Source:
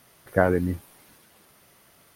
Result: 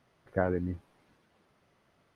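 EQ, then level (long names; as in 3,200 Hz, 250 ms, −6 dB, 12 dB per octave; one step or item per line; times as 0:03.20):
head-to-tape spacing loss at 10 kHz 27 dB
high-shelf EQ 7,000 Hz +9.5 dB
−7.0 dB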